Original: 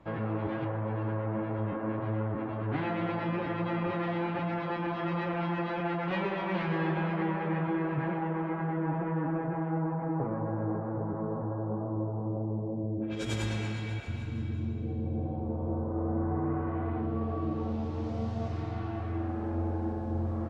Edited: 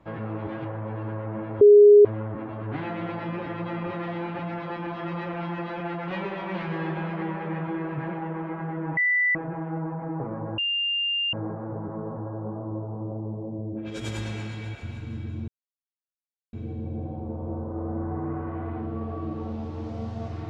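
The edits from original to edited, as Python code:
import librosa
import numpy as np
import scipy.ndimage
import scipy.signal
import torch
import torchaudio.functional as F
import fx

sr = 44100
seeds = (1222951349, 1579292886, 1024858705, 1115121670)

y = fx.edit(x, sr, fx.bleep(start_s=1.61, length_s=0.44, hz=413.0, db=-8.5),
    fx.bleep(start_s=8.97, length_s=0.38, hz=1980.0, db=-19.0),
    fx.insert_tone(at_s=10.58, length_s=0.75, hz=2800.0, db=-23.0),
    fx.insert_silence(at_s=14.73, length_s=1.05), tone=tone)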